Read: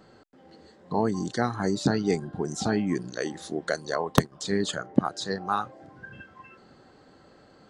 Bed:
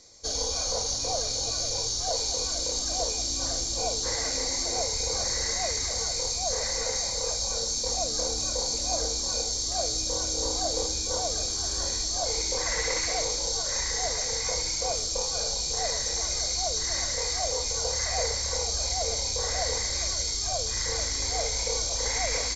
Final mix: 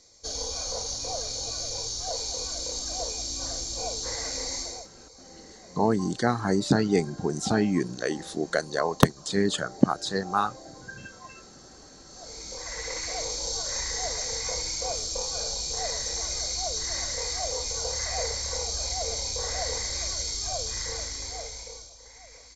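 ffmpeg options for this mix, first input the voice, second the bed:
ffmpeg -i stem1.wav -i stem2.wav -filter_complex "[0:a]adelay=4850,volume=2dB[link_01];[1:a]volume=17.5dB,afade=type=out:start_time=4.57:duration=0.31:silence=0.105925,afade=type=in:start_time=12.05:duration=1.47:silence=0.0891251,afade=type=out:start_time=20.62:duration=1.33:silence=0.105925[link_02];[link_01][link_02]amix=inputs=2:normalize=0" out.wav

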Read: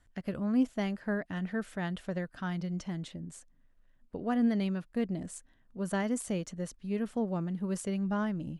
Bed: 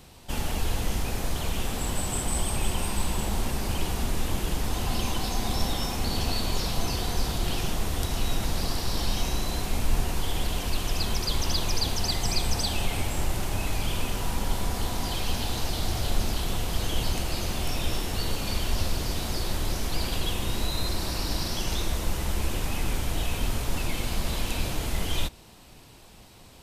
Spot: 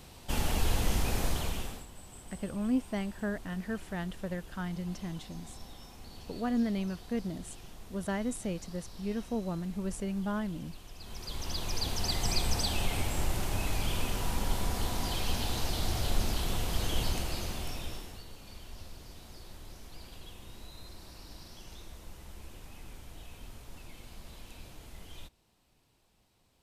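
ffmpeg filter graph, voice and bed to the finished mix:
ffmpeg -i stem1.wav -i stem2.wav -filter_complex "[0:a]adelay=2150,volume=-2dB[link_01];[1:a]volume=16.5dB,afade=type=out:start_time=1.24:duration=0.62:silence=0.1,afade=type=in:start_time=10.99:duration=1.25:silence=0.133352,afade=type=out:start_time=17.01:duration=1.23:silence=0.149624[link_02];[link_01][link_02]amix=inputs=2:normalize=0" out.wav

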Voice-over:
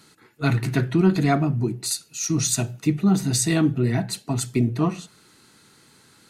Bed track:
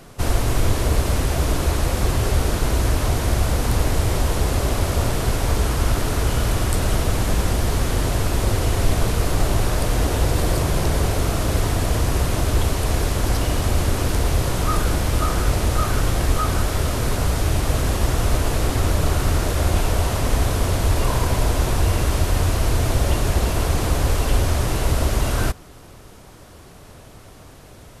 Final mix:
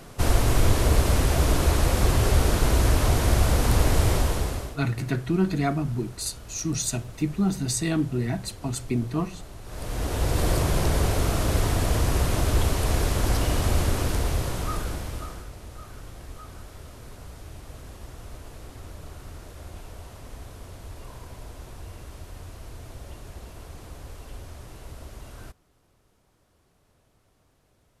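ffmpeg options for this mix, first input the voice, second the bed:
ffmpeg -i stem1.wav -i stem2.wav -filter_complex "[0:a]adelay=4350,volume=-5dB[link_01];[1:a]volume=19dB,afade=type=out:start_time=4.08:duration=0.69:silence=0.0794328,afade=type=in:start_time=9.64:duration=0.84:silence=0.1,afade=type=out:start_time=13.75:duration=1.74:silence=0.112202[link_02];[link_01][link_02]amix=inputs=2:normalize=0" out.wav

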